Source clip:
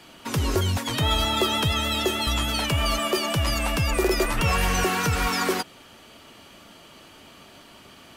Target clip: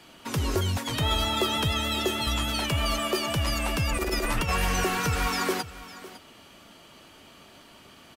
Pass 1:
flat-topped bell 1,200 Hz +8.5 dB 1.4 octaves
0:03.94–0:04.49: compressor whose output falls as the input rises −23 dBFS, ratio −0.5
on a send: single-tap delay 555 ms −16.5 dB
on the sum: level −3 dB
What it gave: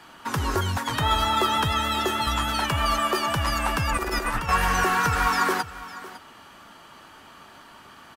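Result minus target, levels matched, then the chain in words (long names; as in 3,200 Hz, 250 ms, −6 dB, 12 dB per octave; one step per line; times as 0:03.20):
1,000 Hz band +5.0 dB
0:03.94–0:04.49: compressor whose output falls as the input rises −23 dBFS, ratio −0.5
on a send: single-tap delay 555 ms −16.5 dB
on the sum: level −3 dB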